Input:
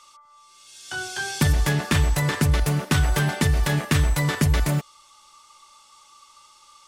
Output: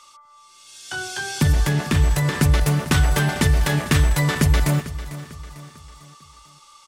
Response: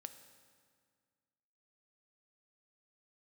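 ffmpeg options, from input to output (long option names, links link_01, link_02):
-filter_complex "[0:a]asettb=1/sr,asplit=3[link_01][link_02][link_03];[link_01]atrim=end=0.884[link_04];[link_02]atrim=start=0.88:end=2.35,asetpts=PTS-STARTPTS,afade=type=in:duration=0.004:curve=qsin,afade=type=out:start_time=1.466:duration=0.004:curve=qsin,acrossover=split=400[link_05][link_06];[link_06]acompressor=threshold=-27dB:ratio=6[link_07];[link_05][link_07]amix=inputs=2:normalize=0[link_08];[link_03]atrim=start=2.346[link_09];[link_04][link_08]acrossfade=duration=0.004:curve1=hsin:curve2=qsin[link_10];[link_10][link_09]acrossfade=duration=0.004:curve1=qsin:curve2=hsin,aecho=1:1:448|896|1344|1792:0.178|0.08|0.036|0.0162,volume=2.5dB"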